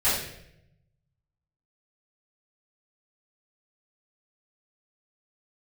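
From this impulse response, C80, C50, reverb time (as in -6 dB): 5.5 dB, 1.5 dB, 0.80 s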